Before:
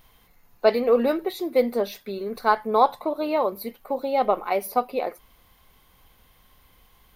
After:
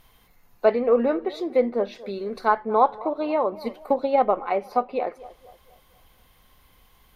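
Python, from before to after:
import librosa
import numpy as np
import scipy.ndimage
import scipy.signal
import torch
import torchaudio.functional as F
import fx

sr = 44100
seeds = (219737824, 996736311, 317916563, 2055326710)

y = fx.echo_banded(x, sr, ms=236, feedback_pct=45, hz=630.0, wet_db=-18)
y = fx.env_lowpass_down(y, sr, base_hz=2000.0, full_db=-20.0)
y = fx.transient(y, sr, attack_db=7, sustain_db=2, at=(3.62, 4.24))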